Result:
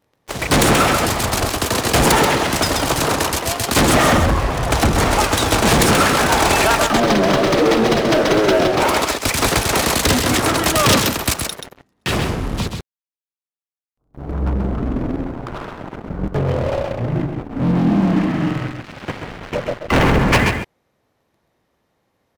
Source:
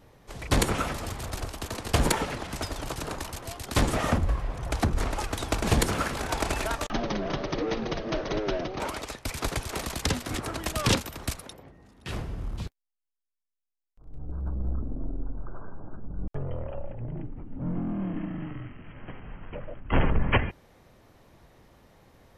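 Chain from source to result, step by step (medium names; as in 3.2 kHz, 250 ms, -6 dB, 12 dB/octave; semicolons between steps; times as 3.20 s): high-pass 160 Hz 6 dB/octave; waveshaping leveller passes 5; on a send: delay 132 ms -6 dB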